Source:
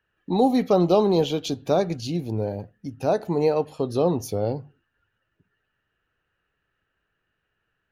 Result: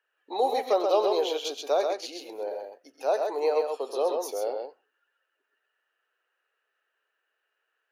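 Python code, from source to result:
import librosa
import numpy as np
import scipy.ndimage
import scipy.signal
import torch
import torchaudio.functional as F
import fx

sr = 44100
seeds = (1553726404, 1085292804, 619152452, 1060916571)

y = scipy.signal.sosfilt(scipy.signal.cheby2(4, 50, 170.0, 'highpass', fs=sr, output='sos'), x)
y = fx.echo_multitap(y, sr, ms=(90, 130), db=(-16.0, -4.5))
y = F.gain(torch.from_numpy(y), -2.5).numpy()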